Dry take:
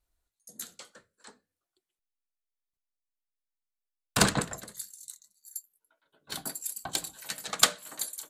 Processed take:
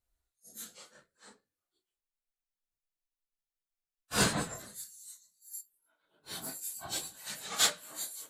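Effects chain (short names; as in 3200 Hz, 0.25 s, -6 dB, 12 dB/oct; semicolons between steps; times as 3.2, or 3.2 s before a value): phase scrambler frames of 0.1 s; gain -3.5 dB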